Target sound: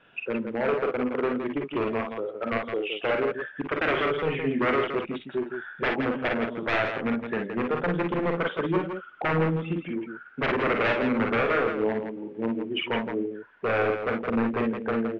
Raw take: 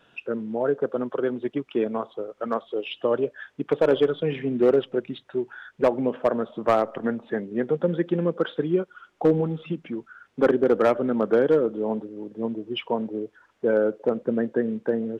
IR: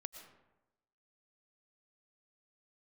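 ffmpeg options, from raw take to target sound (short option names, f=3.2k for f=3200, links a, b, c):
-af "aeval=exprs='0.112*(abs(mod(val(0)/0.112+3,4)-2)-1)':c=same,lowpass=f=2.4k:t=q:w=1.8,aecho=1:1:44|56|166:0.501|0.447|0.447,volume=-2dB"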